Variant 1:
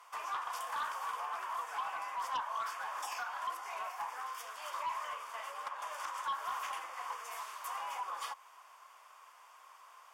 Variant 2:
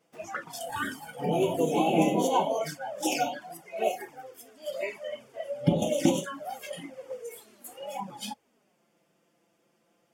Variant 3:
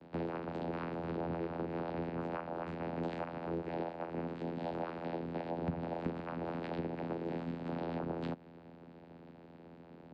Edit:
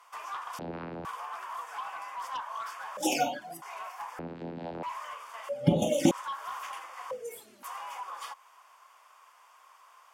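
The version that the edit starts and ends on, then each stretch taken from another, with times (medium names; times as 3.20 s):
1
0.59–1.05 s: from 3
2.97–3.62 s: from 2
4.19–4.83 s: from 3
5.49–6.11 s: from 2
7.11–7.63 s: from 2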